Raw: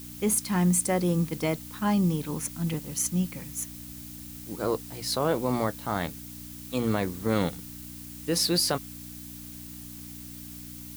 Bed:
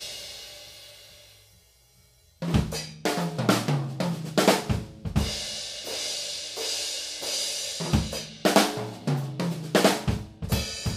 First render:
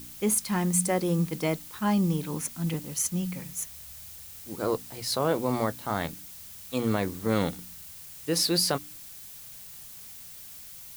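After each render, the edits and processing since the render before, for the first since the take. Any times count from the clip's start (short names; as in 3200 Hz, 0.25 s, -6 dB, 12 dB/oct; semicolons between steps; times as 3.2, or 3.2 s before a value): de-hum 60 Hz, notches 5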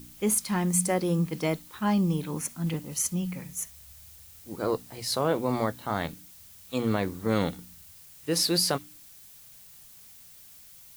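noise print and reduce 6 dB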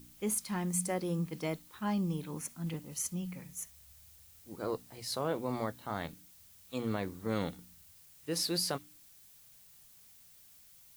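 gain -8 dB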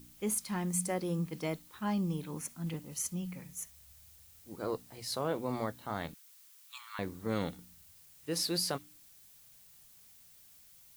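6.14–6.99 steep high-pass 940 Hz 72 dB/oct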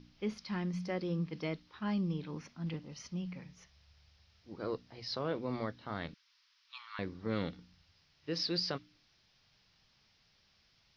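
elliptic low-pass 5300 Hz, stop band 40 dB; dynamic EQ 820 Hz, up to -6 dB, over -52 dBFS, Q 2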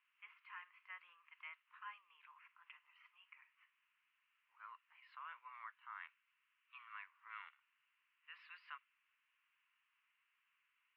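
Chebyshev band-pass 1000–2800 Hz, order 4; bell 1600 Hz -6 dB 2.8 oct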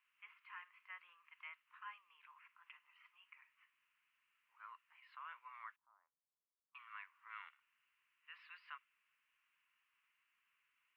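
5.76–6.75 ladder low-pass 730 Hz, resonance 30%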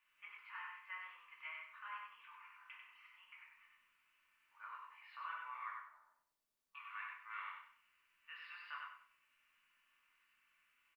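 feedback echo 95 ms, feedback 29%, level -3.5 dB; shoebox room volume 270 m³, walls furnished, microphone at 2.5 m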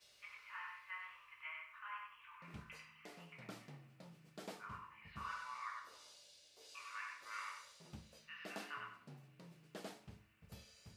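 add bed -30.5 dB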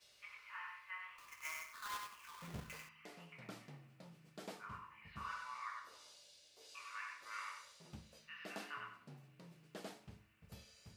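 1.18–2.89 half-waves squared off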